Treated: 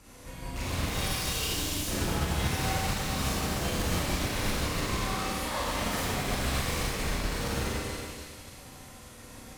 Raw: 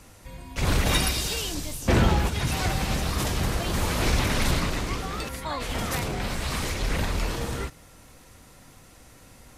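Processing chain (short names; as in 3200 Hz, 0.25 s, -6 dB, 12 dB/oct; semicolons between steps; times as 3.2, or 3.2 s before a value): limiter -20 dBFS, peak gain reduction 10.5 dB; on a send: split-band echo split 2200 Hz, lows 0.142 s, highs 0.286 s, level -7 dB; on the sum: soft clip -28.5 dBFS, distortion -11 dB; added harmonics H 5 -15 dB, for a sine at -28.5 dBFS; Schroeder reverb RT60 1.3 s, combs from 30 ms, DRR -7 dB; upward expander 1.5:1, over -39 dBFS; gain -3 dB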